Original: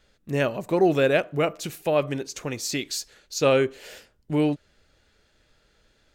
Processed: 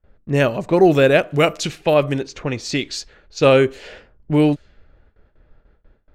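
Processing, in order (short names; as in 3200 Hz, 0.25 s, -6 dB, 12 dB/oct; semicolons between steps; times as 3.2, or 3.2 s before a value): low-pass opened by the level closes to 1200 Hz, open at -21 dBFS; 1.3–1.94 high shelf 2500 Hz +9 dB; gate with hold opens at -55 dBFS; low shelf 71 Hz +11 dB; gain +6.5 dB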